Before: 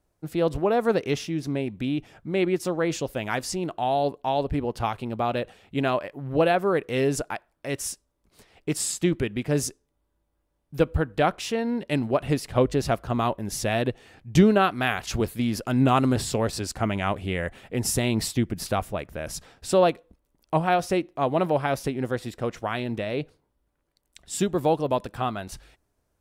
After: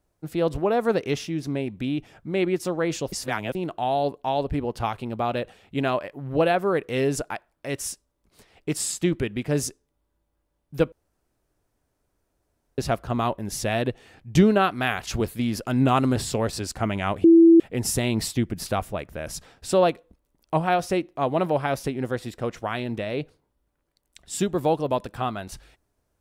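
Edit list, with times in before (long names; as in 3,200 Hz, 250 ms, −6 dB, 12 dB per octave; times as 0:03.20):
0:03.12–0:03.55: reverse
0:10.92–0:12.78: fill with room tone
0:17.24–0:17.60: beep over 332 Hz −9 dBFS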